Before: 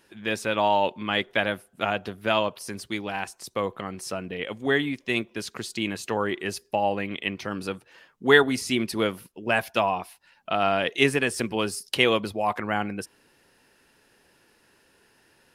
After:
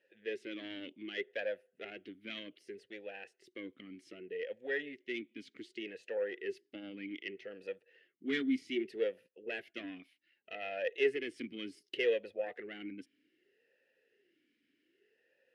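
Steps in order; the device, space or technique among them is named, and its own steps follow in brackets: talk box (tube stage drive 15 dB, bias 0.7; vowel sweep e-i 0.65 Hz); gain +1.5 dB

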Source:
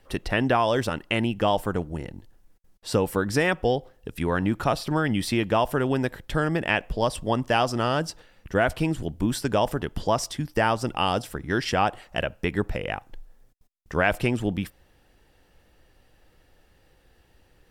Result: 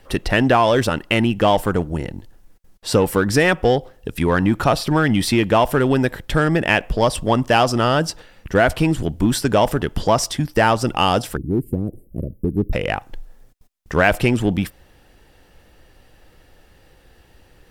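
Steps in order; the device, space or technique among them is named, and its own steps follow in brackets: 11.37–12.73 inverse Chebyshev band-stop 880–6000 Hz, stop band 50 dB; parallel distortion (in parallel at -6 dB: hard clip -24 dBFS, distortion -7 dB); on the sum: gain +5 dB

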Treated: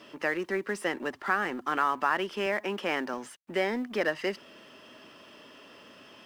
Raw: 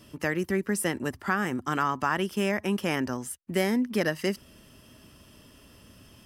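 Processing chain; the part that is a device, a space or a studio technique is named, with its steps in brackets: phone line with mismatched companding (BPF 400–3400 Hz; G.711 law mismatch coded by mu); 2.46–3.14 HPF 130 Hz

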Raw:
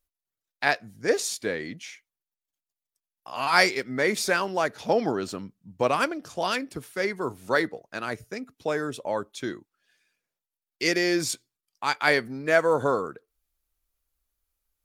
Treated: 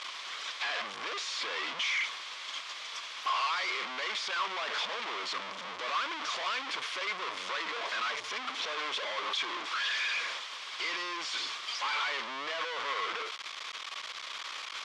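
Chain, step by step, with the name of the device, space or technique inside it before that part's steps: home computer beeper (infinite clipping; speaker cabinet 740–5300 Hz, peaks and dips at 780 Hz -4 dB, 1100 Hz +9 dB, 2200 Hz +5 dB, 3300 Hz +7 dB); gain -5 dB

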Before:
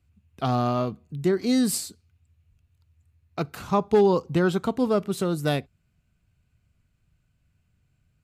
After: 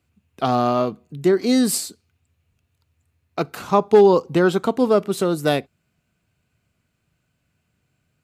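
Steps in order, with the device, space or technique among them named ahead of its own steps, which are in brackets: filter by subtraction (in parallel: LPF 400 Hz 12 dB/oct + phase invert); on the sum: gain +5 dB

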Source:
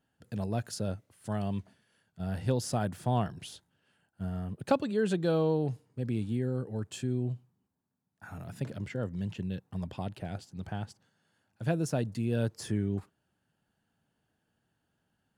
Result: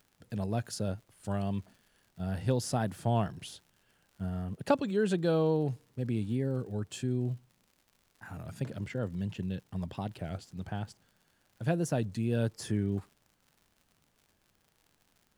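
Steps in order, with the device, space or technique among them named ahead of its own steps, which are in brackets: warped LP (record warp 33 1/3 rpm, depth 100 cents; crackle 86/s -50 dBFS; pink noise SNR 41 dB)

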